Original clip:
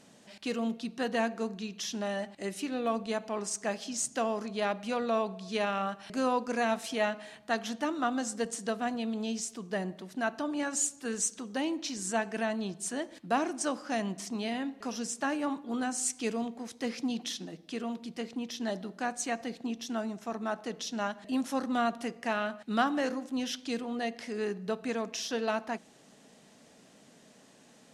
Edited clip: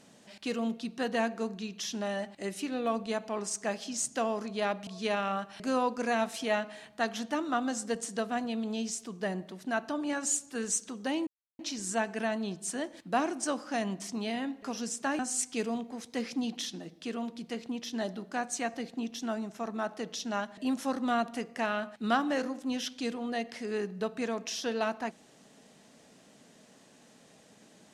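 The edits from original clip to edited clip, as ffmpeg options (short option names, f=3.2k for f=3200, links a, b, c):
-filter_complex "[0:a]asplit=4[a][b][c][d];[a]atrim=end=4.872[e];[b]atrim=start=5.368:end=11.77,asetpts=PTS-STARTPTS,afade=t=out:st=6.398:d=0.004:c=hsin,apad=pad_dur=0.32[f];[c]atrim=start=11.77:end=15.372,asetpts=PTS-STARTPTS,afade=t=in:d=0.004:c=hsin[g];[d]atrim=start=15.858[h];[f][g]concat=n=2:v=0:a=1[i];[e][i]acrossfade=d=0.004:c1=hsin:c2=hsin[j];[j][h]acrossfade=d=0.004:c1=hsin:c2=hsin"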